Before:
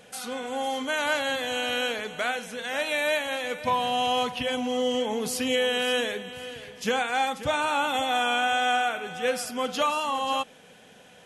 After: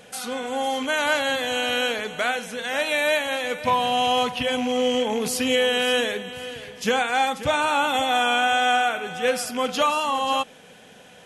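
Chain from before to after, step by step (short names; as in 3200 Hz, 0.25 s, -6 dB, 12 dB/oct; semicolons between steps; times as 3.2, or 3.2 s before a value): rattling part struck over -38 dBFS, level -29 dBFS; gain +4 dB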